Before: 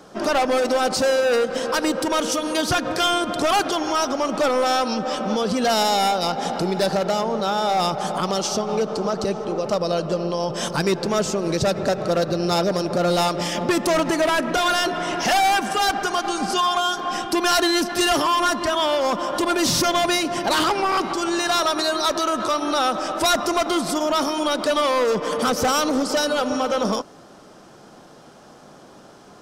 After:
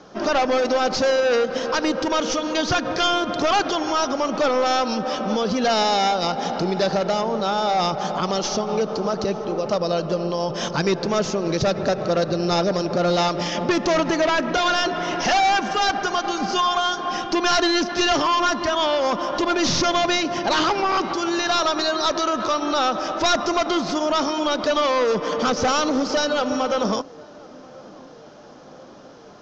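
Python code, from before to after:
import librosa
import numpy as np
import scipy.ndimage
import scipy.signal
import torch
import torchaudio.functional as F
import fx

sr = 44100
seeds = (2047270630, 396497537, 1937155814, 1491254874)

p1 = fx.tracing_dist(x, sr, depth_ms=0.037)
p2 = scipy.signal.sosfilt(scipy.signal.butter(12, 6600.0, 'lowpass', fs=sr, output='sos'), p1)
y = p2 + fx.echo_banded(p2, sr, ms=1035, feedback_pct=73, hz=450.0, wet_db=-22.5, dry=0)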